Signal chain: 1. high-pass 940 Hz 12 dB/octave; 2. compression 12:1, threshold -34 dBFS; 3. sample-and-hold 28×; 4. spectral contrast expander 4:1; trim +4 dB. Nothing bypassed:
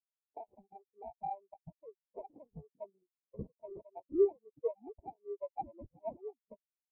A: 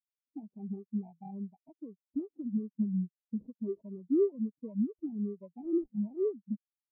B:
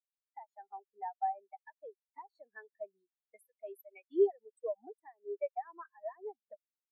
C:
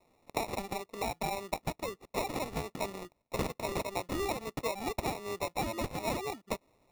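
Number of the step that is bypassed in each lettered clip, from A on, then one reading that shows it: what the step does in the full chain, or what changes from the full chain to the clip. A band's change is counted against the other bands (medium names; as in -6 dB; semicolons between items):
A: 1, crest factor change -7.5 dB; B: 3, loudness change +1.0 LU; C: 4, 500 Hz band -8.0 dB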